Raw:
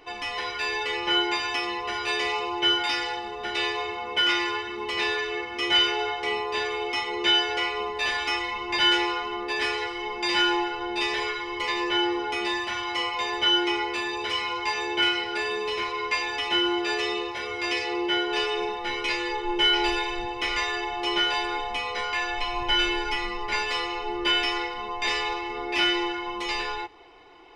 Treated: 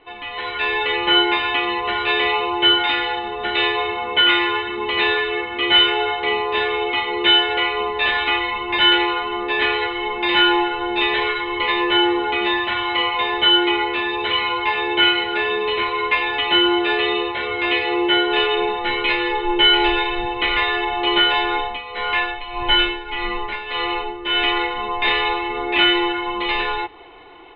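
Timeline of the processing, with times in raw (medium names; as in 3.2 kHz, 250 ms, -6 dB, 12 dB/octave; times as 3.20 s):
21.56–24.57 s: tremolo 1.7 Hz, depth 73%
whole clip: steep low-pass 4 kHz 96 dB/octave; level rider gain up to 8.5 dB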